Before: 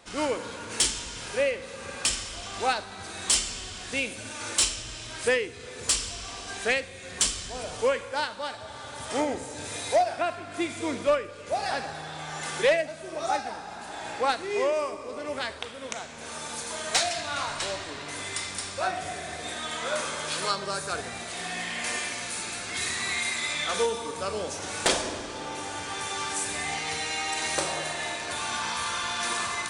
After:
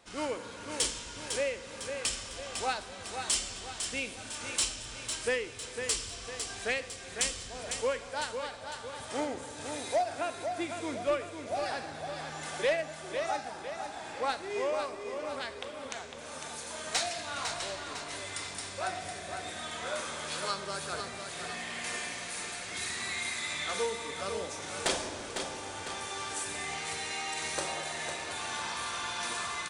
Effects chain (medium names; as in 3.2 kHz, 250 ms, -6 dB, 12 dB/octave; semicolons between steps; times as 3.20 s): feedback delay 503 ms, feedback 47%, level -7 dB; trim -6.5 dB